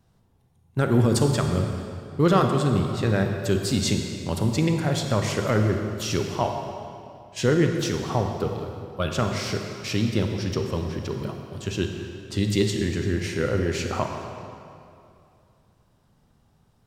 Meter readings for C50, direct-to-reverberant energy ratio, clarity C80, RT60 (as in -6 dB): 4.5 dB, 3.5 dB, 5.5 dB, 2.6 s